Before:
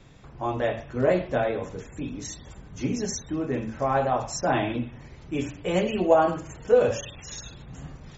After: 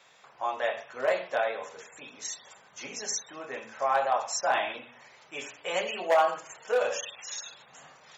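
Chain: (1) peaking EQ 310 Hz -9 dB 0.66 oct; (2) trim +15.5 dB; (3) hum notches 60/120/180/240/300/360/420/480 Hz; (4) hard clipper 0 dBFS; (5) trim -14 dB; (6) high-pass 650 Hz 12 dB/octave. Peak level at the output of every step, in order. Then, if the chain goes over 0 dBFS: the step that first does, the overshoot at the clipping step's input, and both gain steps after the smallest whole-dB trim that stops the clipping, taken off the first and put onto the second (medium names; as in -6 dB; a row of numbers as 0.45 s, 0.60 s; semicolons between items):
-7.5 dBFS, +8.0 dBFS, +8.0 dBFS, 0.0 dBFS, -14.0 dBFS, -12.0 dBFS; step 2, 8.0 dB; step 2 +7.5 dB, step 5 -6 dB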